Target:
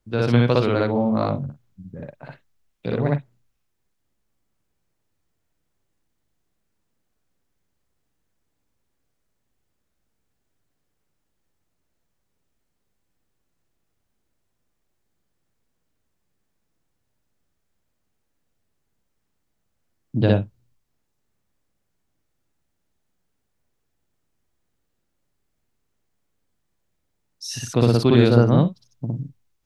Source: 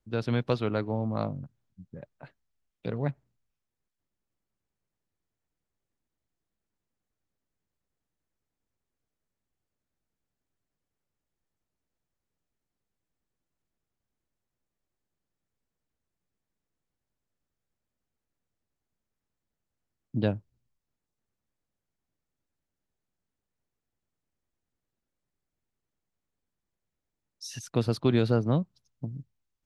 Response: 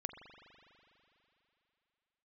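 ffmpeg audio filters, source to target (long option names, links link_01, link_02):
-filter_complex "[0:a]asplit=2[link_01][link_02];[1:a]atrim=start_sample=2205,atrim=end_sample=3087,adelay=59[link_03];[link_02][link_03]afir=irnorm=-1:irlink=0,volume=4dB[link_04];[link_01][link_04]amix=inputs=2:normalize=0,volume=6dB"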